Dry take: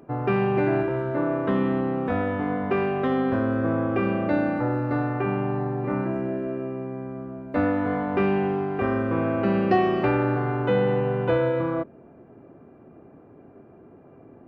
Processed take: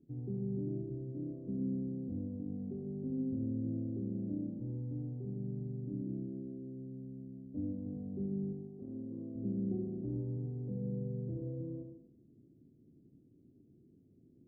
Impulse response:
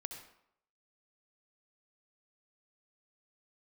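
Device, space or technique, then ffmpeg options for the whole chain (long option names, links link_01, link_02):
next room: -filter_complex "[0:a]asettb=1/sr,asplit=3[link_01][link_02][link_03];[link_01]atrim=end=8.524[link_04];[link_02]atrim=start=8.52:end=9.36,asetpts=PTS-STARTPTS,afade=type=in:duration=0.004:curve=qsin,afade=type=out:start_time=0.836:duration=0.004:curve=qsin,highpass=frequency=370:poles=1[link_05];[link_03]atrim=start=9.356[link_06];[link_04][link_05]acrossfade=duration=0.004:curve1=hsin:curve2=qsin[link_07];[link_07][link_06]acrossfade=duration=0.004:curve1=qsin:curve2=hsin,lowpass=frequency=300:width=0.5412,lowpass=frequency=300:width=1.3066[link_08];[1:a]atrim=start_sample=2205[link_09];[link_08][link_09]afir=irnorm=-1:irlink=0,volume=-8.5dB"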